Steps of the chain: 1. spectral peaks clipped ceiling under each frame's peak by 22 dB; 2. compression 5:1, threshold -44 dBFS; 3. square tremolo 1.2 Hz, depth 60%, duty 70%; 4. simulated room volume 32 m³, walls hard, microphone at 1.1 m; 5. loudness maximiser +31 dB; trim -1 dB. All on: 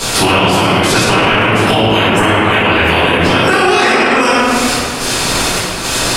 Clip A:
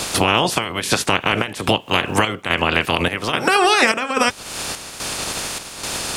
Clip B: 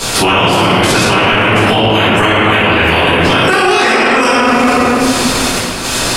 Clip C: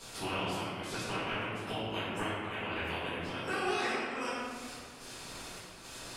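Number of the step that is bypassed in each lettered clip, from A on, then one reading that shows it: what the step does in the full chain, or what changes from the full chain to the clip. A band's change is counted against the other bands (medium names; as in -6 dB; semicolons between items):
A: 4, momentary loudness spread change +6 LU; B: 2, mean gain reduction 9.5 dB; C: 5, crest factor change +7.0 dB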